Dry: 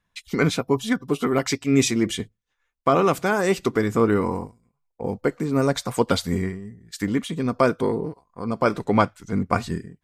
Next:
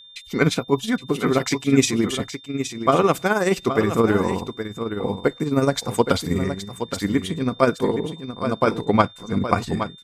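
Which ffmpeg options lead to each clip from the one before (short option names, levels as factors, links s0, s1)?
-af "tremolo=f=19:d=0.56,aecho=1:1:819:0.335,aeval=exprs='val(0)+0.00447*sin(2*PI*3600*n/s)':c=same,volume=1.5"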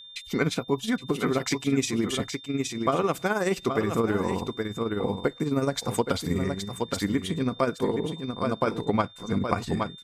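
-af "acompressor=threshold=0.0631:ratio=2.5"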